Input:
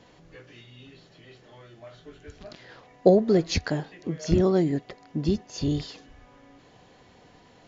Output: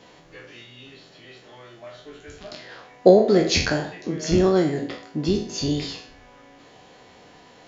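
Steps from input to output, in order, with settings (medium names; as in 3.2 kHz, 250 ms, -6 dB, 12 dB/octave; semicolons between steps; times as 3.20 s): spectral sustain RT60 0.50 s; bass shelf 190 Hz -9.5 dB; de-hum 56.02 Hz, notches 36; trim +5.5 dB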